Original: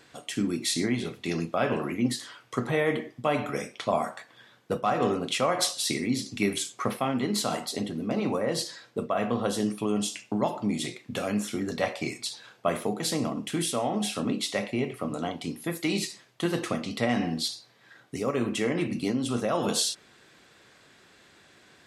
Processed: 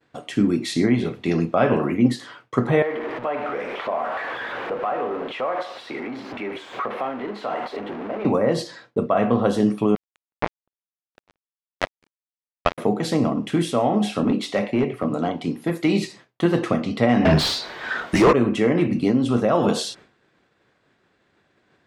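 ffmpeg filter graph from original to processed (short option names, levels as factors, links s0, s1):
-filter_complex "[0:a]asettb=1/sr,asplit=3[s0][s1][s2];[s0]atrim=end=2.824[s3];[s1]atrim=start=2.82:end=8.25,asetpts=PTS-STARTPTS,afade=t=in:d=0.004:c=qsin,afade=t=out:st=5.426:d=0.004:c=qsin,aeval=exprs='val(0)+0.5*0.0422*sgn(val(0))':c=same,acompressor=threshold=0.0282:ratio=2.5:attack=3.2:release=140:knee=1:detection=peak,acrossover=split=350 3200:gain=0.112 1 0.0794[s4][s5][s6];[s4][s5][s6]amix=inputs=3:normalize=0[s7];[s2]atrim=start=8.246[s8];[s3][s7]acrossfade=d=0.004:c1=hsin:c2=qsin[s9];[s9][s8]acrossfade=d=0.004:c1=qsin:c2=hsin,asettb=1/sr,asplit=3[s10][s11][s12];[s10]atrim=end=9.954[s13];[s11]atrim=start=9.95:end=12.78,asetpts=PTS-STARTPTS,afade=t=in:d=0.004:c=qsin,afade=t=out:st=2.826:d=0.004:c=qsin,lowpass=f=4300:w=0.5412,lowpass=f=4300:w=1.3066,tiltshelf=f=680:g=-3.5,acrusher=bits=2:mix=0:aa=0.5[s14];[s12]atrim=start=12.776[s15];[s13][s14]acrossfade=d=0.004:c1=hsin:c2=qsin[s16];[s16][s15]acrossfade=d=0.004:c1=qsin:c2=hsin,asettb=1/sr,asplit=3[s17][s18][s19];[s17]atrim=end=14.244[s20];[s18]atrim=start=14.24:end=15.83,asetpts=PTS-STARTPTS,afade=t=in:d=0.004:c=qsin,afade=t=out:st=1.586:d=0.004:c=qsin,highpass=110,asoftclip=type=hard:threshold=0.075[s21];[s19]atrim=start=15.826[s22];[s20][s21]acrossfade=d=0.004:c1=hsin:c2=qsin[s23];[s23][s22]acrossfade=d=0.004:c1=qsin:c2=hsin,asettb=1/sr,asplit=3[s24][s25][s26];[s24]atrim=end=17.254[s27];[s25]atrim=start=17.25:end=18.33,asetpts=PTS-STARTPTS,afade=t=in:d=0.004:c=qsin,afade=t=out:st=1.076:d=0.004:c=qsin,afreqshift=-85,asplit=2[s28][s29];[s29]highpass=f=720:p=1,volume=28.2,asoftclip=type=tanh:threshold=0.188[s30];[s28][s30]amix=inputs=2:normalize=0,lowpass=f=7100:p=1,volume=0.501[s31];[s26]atrim=start=18.326[s32];[s27][s31]acrossfade=d=0.004:c1=hsin:c2=qsin[s33];[s33][s32]acrossfade=d=0.004:c1=qsin:c2=hsin,lowpass=f=1400:p=1,agate=range=0.0224:threshold=0.00316:ratio=3:detection=peak,volume=2.82"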